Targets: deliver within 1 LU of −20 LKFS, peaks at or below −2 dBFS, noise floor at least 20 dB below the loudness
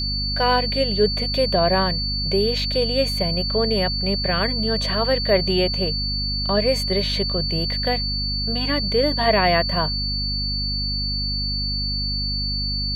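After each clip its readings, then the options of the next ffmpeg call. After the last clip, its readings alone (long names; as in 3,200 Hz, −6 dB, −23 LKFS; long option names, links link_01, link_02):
mains hum 50 Hz; hum harmonics up to 250 Hz; level of the hum −25 dBFS; interfering tone 4,500 Hz; level of the tone −24 dBFS; integrated loudness −21.0 LKFS; sample peak −5.5 dBFS; target loudness −20.0 LKFS
→ -af "bandreject=frequency=50:width_type=h:width=4,bandreject=frequency=100:width_type=h:width=4,bandreject=frequency=150:width_type=h:width=4,bandreject=frequency=200:width_type=h:width=4,bandreject=frequency=250:width_type=h:width=4"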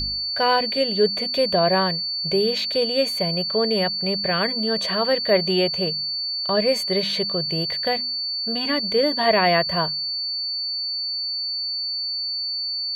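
mains hum none found; interfering tone 4,500 Hz; level of the tone −24 dBFS
→ -af "bandreject=frequency=4500:width=30"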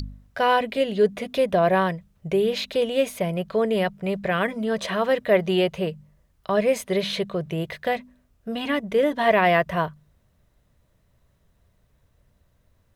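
interfering tone none found; integrated loudness −23.5 LKFS; sample peak −7.0 dBFS; target loudness −20.0 LKFS
→ -af "volume=3.5dB"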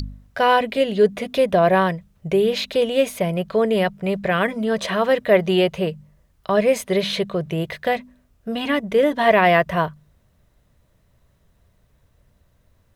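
integrated loudness −20.0 LKFS; sample peak −3.5 dBFS; background noise floor −61 dBFS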